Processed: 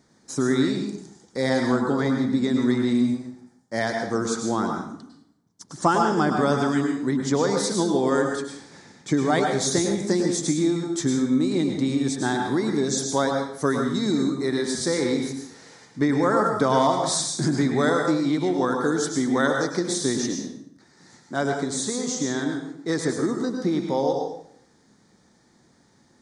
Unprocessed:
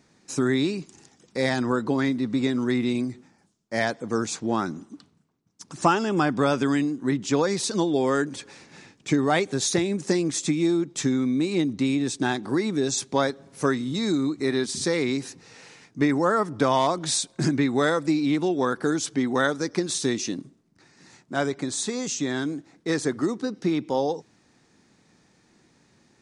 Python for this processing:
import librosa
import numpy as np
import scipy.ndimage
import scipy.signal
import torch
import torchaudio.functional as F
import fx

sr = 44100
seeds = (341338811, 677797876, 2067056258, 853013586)

y = fx.peak_eq(x, sr, hz=2600.0, db=-14.5, octaves=0.31)
y = fx.rev_plate(y, sr, seeds[0], rt60_s=0.67, hf_ratio=0.8, predelay_ms=90, drr_db=2.5)